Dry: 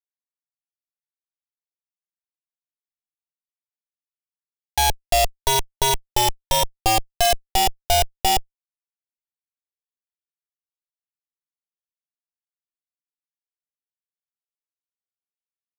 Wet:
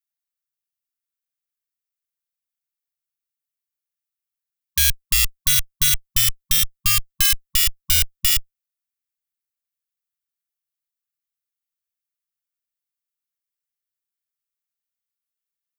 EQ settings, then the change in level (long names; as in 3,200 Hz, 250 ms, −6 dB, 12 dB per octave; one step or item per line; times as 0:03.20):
linear-phase brick-wall band-stop 160–1,100 Hz
high-shelf EQ 11,000 Hz +11 dB
+1.0 dB